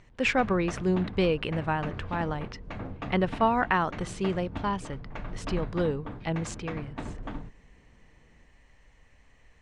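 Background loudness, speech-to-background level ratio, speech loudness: −40.0 LKFS, 10.5 dB, −29.5 LKFS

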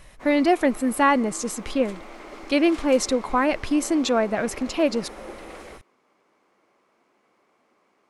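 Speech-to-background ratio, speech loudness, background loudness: 18.5 dB, −22.5 LKFS, −41.0 LKFS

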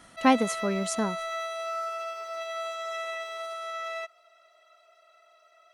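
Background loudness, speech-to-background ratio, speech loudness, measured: −34.5 LKFS, 7.5 dB, −27.0 LKFS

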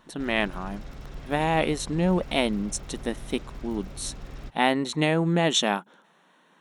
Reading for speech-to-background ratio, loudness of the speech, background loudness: 16.5 dB, −26.5 LKFS, −43.0 LKFS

